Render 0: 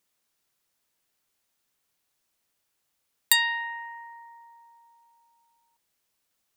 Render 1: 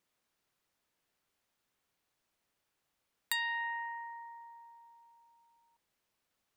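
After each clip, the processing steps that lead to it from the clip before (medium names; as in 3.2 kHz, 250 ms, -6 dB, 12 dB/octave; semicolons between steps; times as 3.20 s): compression 2:1, threshold -33 dBFS, peak gain reduction 10.5 dB; treble shelf 4.2 kHz -10 dB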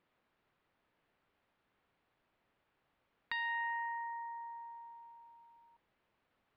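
compression 1.5:1, threshold -52 dBFS, peak gain reduction 8 dB; Gaussian low-pass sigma 2.8 samples; trim +7.5 dB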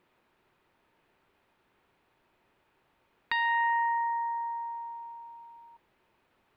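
small resonant body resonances 370/910/2500 Hz, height 6 dB; trim +8 dB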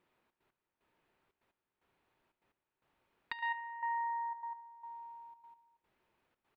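trance gate "xxx.x...xx" 149 bpm -12 dB; feedback delay 73 ms, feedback 41%, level -20.5 dB; trim -7.5 dB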